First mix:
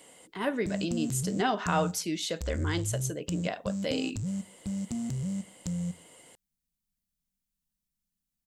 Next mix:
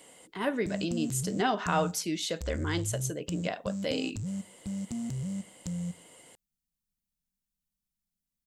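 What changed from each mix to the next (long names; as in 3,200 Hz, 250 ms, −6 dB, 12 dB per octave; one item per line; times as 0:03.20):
reverb: off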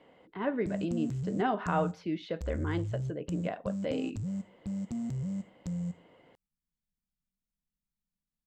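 speech: add high-frequency loss of the air 290 metres
master: add high-shelf EQ 3,400 Hz −11.5 dB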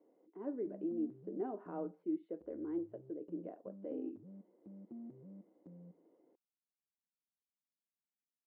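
master: add four-pole ladder band-pass 370 Hz, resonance 60%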